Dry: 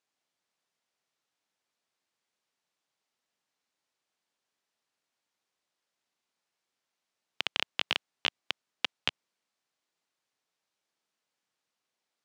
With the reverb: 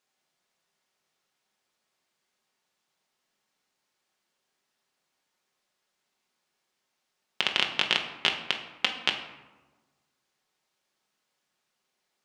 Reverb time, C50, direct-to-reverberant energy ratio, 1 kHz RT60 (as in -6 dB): 1.3 s, 8.0 dB, 2.5 dB, 1.2 s